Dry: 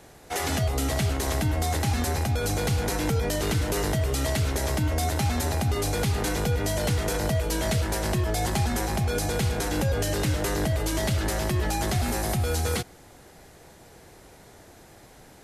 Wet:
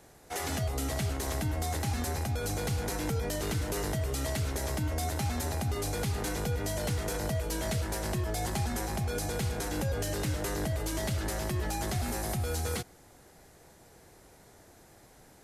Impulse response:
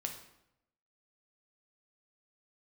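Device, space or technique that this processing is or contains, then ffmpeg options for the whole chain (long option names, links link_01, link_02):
exciter from parts: -filter_complex "[0:a]asplit=2[link_01][link_02];[link_02]highpass=2900,asoftclip=type=tanh:threshold=-34dB,highpass=2300,volume=-9dB[link_03];[link_01][link_03]amix=inputs=2:normalize=0,volume=-6.5dB"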